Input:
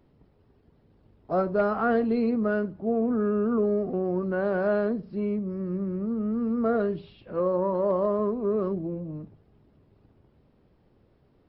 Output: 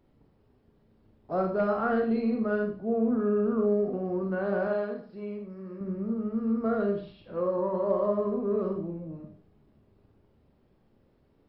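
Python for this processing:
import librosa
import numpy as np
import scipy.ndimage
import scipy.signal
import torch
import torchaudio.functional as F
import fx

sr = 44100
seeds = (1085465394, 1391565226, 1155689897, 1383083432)

y = fx.low_shelf(x, sr, hz=420.0, db=-11.0, at=(4.67, 5.81))
y = fx.rev_schroeder(y, sr, rt60_s=0.44, comb_ms=28, drr_db=2.0)
y = y * librosa.db_to_amplitude(-4.5)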